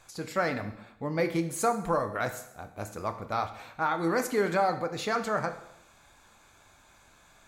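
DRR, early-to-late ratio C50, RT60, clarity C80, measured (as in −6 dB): 7.5 dB, 11.5 dB, 0.80 s, 13.5 dB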